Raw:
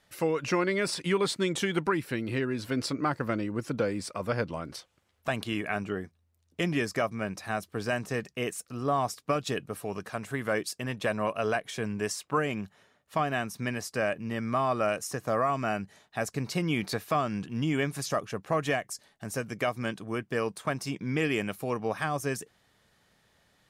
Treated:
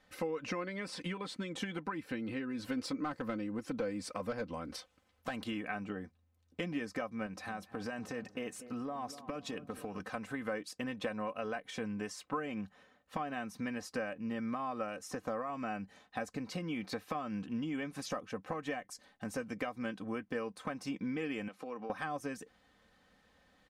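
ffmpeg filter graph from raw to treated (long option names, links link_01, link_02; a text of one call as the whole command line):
ffmpeg -i in.wav -filter_complex "[0:a]asettb=1/sr,asplit=3[link_01][link_02][link_03];[link_01]atrim=end=2.494[link_04];[link_02]atrim=start=2.49:end=5.51,asetpts=PTS-STARTPTS,afade=type=in:duration=0.004:curve=qsin,afade=type=out:start_time=3.016:duration=0.004:curve=qsin,highshelf=frequency=5800:gain=7,asoftclip=type=hard:threshold=-21.5dB[link_05];[link_03]atrim=start=5.506[link_06];[link_04][link_05]acrossfade=duration=0.004:curve1=hsin:curve2=qsin[link_07];[link_07][link_06]acrossfade=duration=0.004:curve1=qsin:curve2=hsin,asettb=1/sr,asplit=3[link_08][link_09][link_10];[link_08]atrim=end=7.264[link_11];[link_09]atrim=start=7.26:end=10,asetpts=PTS-STARTPTS,afade=type=in:duration=0.004:curve=qsin,afade=type=out:start_time=2.736:duration=0.004:curve=qsin,highpass=56,acompressor=threshold=-34dB:ratio=5:attack=3.2:release=140:knee=1:detection=peak,asplit=2[link_12][link_13];[link_13]adelay=244,lowpass=frequency=1100:poles=1,volume=-13.5dB,asplit=2[link_14][link_15];[link_15]adelay=244,lowpass=frequency=1100:poles=1,volume=0.53,asplit=2[link_16][link_17];[link_17]adelay=244,lowpass=frequency=1100:poles=1,volume=0.53,asplit=2[link_18][link_19];[link_19]adelay=244,lowpass=frequency=1100:poles=1,volume=0.53,asplit=2[link_20][link_21];[link_21]adelay=244,lowpass=frequency=1100:poles=1,volume=0.53[link_22];[link_12][link_14][link_16][link_18][link_20][link_22]amix=inputs=6:normalize=0,atrim=end_sample=120834[link_23];[link_10]atrim=start=9.996[link_24];[link_11][link_23]acrossfade=duration=0.004:curve1=hsin:curve2=qsin[link_25];[link_25][link_24]acrossfade=duration=0.004:curve1=qsin:curve2=hsin,asettb=1/sr,asplit=3[link_26][link_27][link_28];[link_26]atrim=end=21.484[link_29];[link_27]atrim=start=21.48:end=21.9,asetpts=PTS-STARTPTS,afade=type=in:duration=0.004:curve=qsin,afade=type=out:start_time=0.416:duration=0.004:curve=qsin,acompressor=threshold=-38dB:ratio=6:attack=3.2:release=140:knee=1:detection=peak,highpass=240,lowpass=7000[link_30];[link_28]atrim=start=21.896[link_31];[link_29][link_30]acrossfade=duration=0.004:curve1=hsin:curve2=qsin[link_32];[link_32][link_31]acrossfade=duration=0.004:curve1=qsin:curve2=hsin,lowpass=frequency=2900:poles=1,acompressor=threshold=-35dB:ratio=6,aecho=1:1:3.9:0.64,volume=-1dB" out.wav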